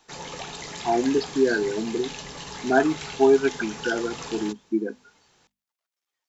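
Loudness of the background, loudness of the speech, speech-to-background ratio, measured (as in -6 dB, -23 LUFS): -36.0 LUFS, -24.5 LUFS, 11.5 dB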